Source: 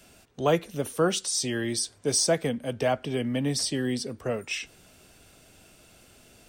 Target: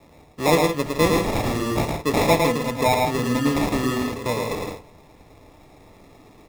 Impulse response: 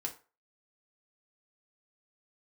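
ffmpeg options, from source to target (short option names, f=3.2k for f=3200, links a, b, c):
-filter_complex "[0:a]acrusher=samples=29:mix=1:aa=0.000001,aecho=1:1:109|161:0.668|0.355,asplit=2[a][b];[1:a]atrim=start_sample=2205,highshelf=f=10k:g=-10.5[c];[b][c]afir=irnorm=-1:irlink=0,volume=-2.5dB[d];[a][d]amix=inputs=2:normalize=0"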